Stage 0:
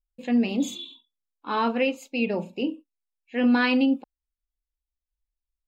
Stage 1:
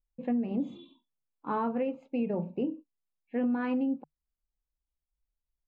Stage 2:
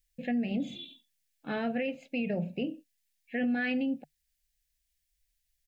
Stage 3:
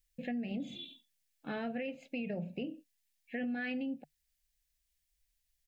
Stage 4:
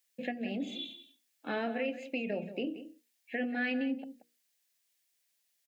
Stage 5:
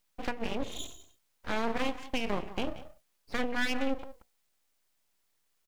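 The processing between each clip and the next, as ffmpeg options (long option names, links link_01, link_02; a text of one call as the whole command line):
ffmpeg -i in.wav -af "lowpass=1100,equalizer=frequency=150:width=3.8:gain=12,acompressor=threshold=-27dB:ratio=6" out.wav
ffmpeg -i in.wav -af "firequalizer=gain_entry='entry(130,0);entry(350,-9);entry(700,0);entry(1000,-25);entry(1700,9);entry(2800,9);entry(5500,11)':delay=0.05:min_phase=1,alimiter=level_in=4dB:limit=-24dB:level=0:latency=1:release=30,volume=-4dB,volume=4.5dB" out.wav
ffmpeg -i in.wav -af "acompressor=threshold=-37dB:ratio=2,volume=-1.5dB" out.wav
ffmpeg -i in.wav -filter_complex "[0:a]highpass=frequency=230:width=0.5412,highpass=frequency=230:width=1.3066,bandreject=frequency=60:width_type=h:width=6,bandreject=frequency=120:width_type=h:width=6,bandreject=frequency=180:width_type=h:width=6,bandreject=frequency=240:width_type=h:width=6,bandreject=frequency=300:width_type=h:width=6,bandreject=frequency=360:width_type=h:width=6,bandreject=frequency=420:width_type=h:width=6,bandreject=frequency=480:width_type=h:width=6,asplit=2[link_01][link_02];[link_02]adelay=180.8,volume=-13dB,highshelf=frequency=4000:gain=-4.07[link_03];[link_01][link_03]amix=inputs=2:normalize=0,volume=5.5dB" out.wav
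ffmpeg -i in.wav -af "aeval=exprs='0.0794*(cos(1*acos(clip(val(0)/0.0794,-1,1)))-cos(1*PI/2))+0.0178*(cos(4*acos(clip(val(0)/0.0794,-1,1)))-cos(4*PI/2))':channel_layout=same,aeval=exprs='abs(val(0))':channel_layout=same,volume=2.5dB" out.wav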